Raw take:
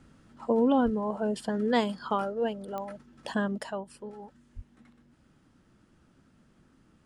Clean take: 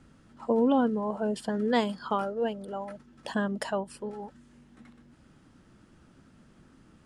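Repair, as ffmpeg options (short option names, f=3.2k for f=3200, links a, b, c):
-filter_complex "[0:a]adeclick=t=4,asplit=3[a][b][c];[a]afade=t=out:st=0.84:d=0.02[d];[b]highpass=f=140:w=0.5412,highpass=f=140:w=1.3066,afade=t=in:st=0.84:d=0.02,afade=t=out:st=0.96:d=0.02[e];[c]afade=t=in:st=0.96:d=0.02[f];[d][e][f]amix=inputs=3:normalize=0,asplit=3[g][h][i];[g]afade=t=out:st=4.55:d=0.02[j];[h]highpass=f=140:w=0.5412,highpass=f=140:w=1.3066,afade=t=in:st=4.55:d=0.02,afade=t=out:st=4.67:d=0.02[k];[i]afade=t=in:st=4.67:d=0.02[l];[j][k][l]amix=inputs=3:normalize=0,asetnsamples=n=441:p=0,asendcmd='3.58 volume volume 5dB',volume=0dB"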